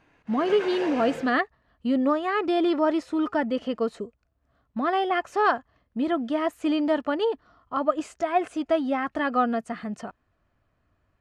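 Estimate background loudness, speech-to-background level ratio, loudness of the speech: −35.5 LKFS, 9.5 dB, −26.0 LKFS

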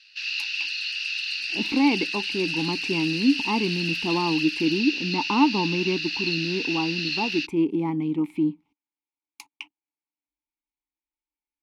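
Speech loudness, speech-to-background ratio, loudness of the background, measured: −26.0 LKFS, 1.0 dB, −27.0 LKFS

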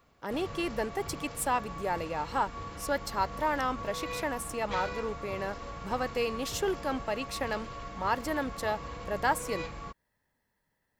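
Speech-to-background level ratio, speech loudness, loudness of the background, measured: 7.5 dB, −33.5 LKFS, −41.0 LKFS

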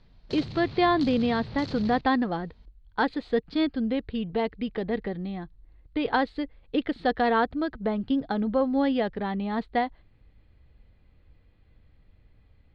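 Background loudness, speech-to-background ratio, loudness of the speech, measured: −39.5 LKFS, 12.0 dB, −27.5 LKFS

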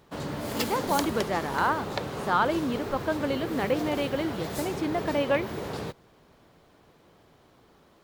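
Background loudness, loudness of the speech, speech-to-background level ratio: −34.0 LKFS, −29.0 LKFS, 5.0 dB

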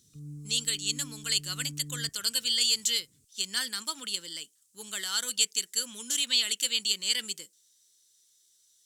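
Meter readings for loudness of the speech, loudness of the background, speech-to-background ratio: −28.0 LKFS, −45.0 LKFS, 17.0 dB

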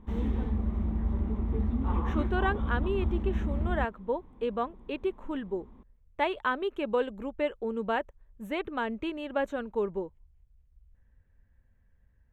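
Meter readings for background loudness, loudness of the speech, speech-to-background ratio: −31.5 LKFS, −33.0 LKFS, −1.5 dB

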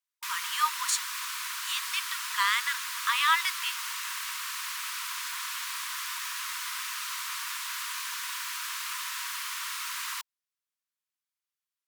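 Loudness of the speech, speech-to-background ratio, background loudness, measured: −29.0 LKFS, 4.0 dB, −33.0 LKFS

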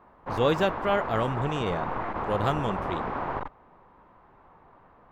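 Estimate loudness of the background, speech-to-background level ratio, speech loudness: −32.5 LKFS, 4.0 dB, −28.5 LKFS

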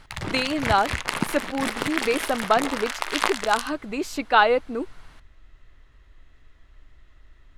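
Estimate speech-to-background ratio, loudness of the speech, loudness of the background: 4.0 dB, −24.5 LKFS, −28.5 LKFS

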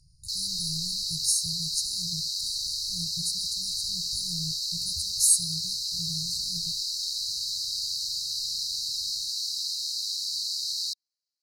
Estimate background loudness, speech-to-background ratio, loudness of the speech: −28.5 LKFS, −1.5 dB, −30.0 LKFS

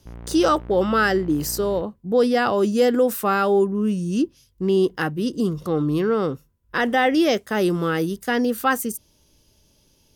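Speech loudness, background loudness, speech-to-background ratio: −21.5 LKFS, −40.0 LKFS, 18.5 dB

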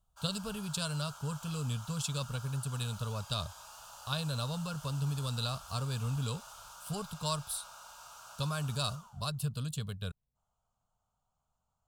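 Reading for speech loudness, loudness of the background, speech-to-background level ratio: −36.5 LKFS, −50.0 LKFS, 13.5 dB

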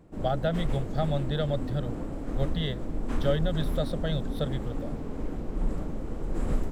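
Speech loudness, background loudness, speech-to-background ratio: −31.5 LKFS, −35.0 LKFS, 3.5 dB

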